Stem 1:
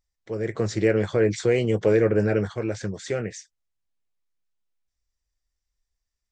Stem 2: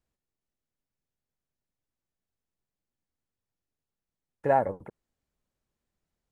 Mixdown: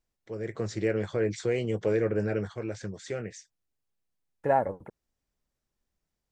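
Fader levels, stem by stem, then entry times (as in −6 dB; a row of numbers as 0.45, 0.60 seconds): −7.0, −1.0 decibels; 0.00, 0.00 seconds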